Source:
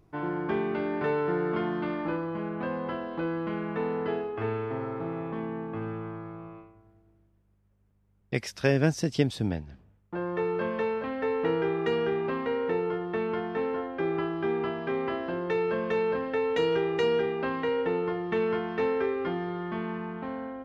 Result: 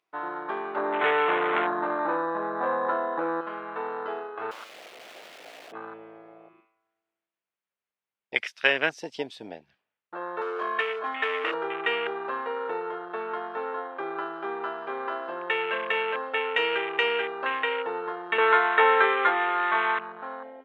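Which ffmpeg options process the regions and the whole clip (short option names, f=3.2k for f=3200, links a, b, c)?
-filter_complex "[0:a]asettb=1/sr,asplit=3[a][b][c];[a]atrim=end=0.764[d];[b]atrim=start=0.76:end=3.41,asetpts=PTS-STARTPTS,afade=t=in:d=0.004:c=qsin,afade=t=out:st=2.646:d=0.004:c=qsin,lowpass=1.2k,aeval=exprs='0.119*sin(PI/2*1.78*val(0)/0.119)':c=same[e];[c]atrim=start=3.406[f];[d][e]acrossfade=d=0.004:c1=hsin:c2=qsin[g];[g][f]acrossfade=d=0.004:c1=qsin:c2=hsin,asettb=1/sr,asplit=3[h][i][j];[h]atrim=end=4.514[k];[i]atrim=start=4.51:end=5.72,asetpts=PTS-STARTPTS,afade=t=in:d=0.004:c=qsin,afade=t=out:st=1.206:d=0.004:c=qsin,highpass=160,acrossover=split=280|3000[l][m][n];[m]acompressor=threshold=-38dB:ratio=6:attack=3.2:release=140:knee=2.83:detection=peak[o];[l][o][n]amix=inputs=3:normalize=0,aeval=exprs='(mod(59.6*val(0)+1,2)-1)/59.6':c=same[p];[j]atrim=start=5.716[q];[k][p]acrossfade=d=0.004:c1=hsin:c2=qsin[r];[r][q]acrossfade=d=0.004:c1=qsin:c2=hsin,asettb=1/sr,asplit=3[s][t][u];[s]atrim=end=10.414[v];[t]atrim=start=10.41:end=11.54,asetpts=PTS-STARTPTS,afade=t=in:d=0.004:c=qsin,afade=t=out:st=1.126:d=0.004:c=qsin,highpass=f=69:w=0.5412,highpass=f=69:w=1.3066,aecho=1:1:2.8:0.97,atrim=end_sample=49833,volume=25dB,asoftclip=hard,volume=-25dB[w];[u]atrim=start=11.536[x];[v][w]acrossfade=d=0.004:c1=hsin:c2=qsin[y];[y][x]acrossfade=d=0.004:c1=qsin:c2=hsin,asettb=1/sr,asplit=3[z][aa][ab];[z]atrim=end=18.384[ac];[aa]atrim=start=18.38:end=19.99,asetpts=PTS-STARTPTS,afade=t=in:d=0.004:c=qsin,afade=t=out:st=1.606:d=0.004:c=qsin,highpass=320,equalizer=f=490:t=q:w=4:g=4,equalizer=f=920:t=q:w=4:g=5,equalizer=f=1.4k:t=q:w=4:g=6,lowpass=f=2.2k:w=0.5412,lowpass=f=2.2k:w=1.3066,acontrast=47[ad];[ab]atrim=start=19.986[ae];[ac][ad]acrossfade=d=0.004:c1=hsin:c2=qsin[af];[af][ae]acrossfade=d=0.004:c1=qsin:c2=hsin,afwtdn=0.0178,highpass=680,equalizer=f=2.8k:w=0.7:g=11,volume=3dB"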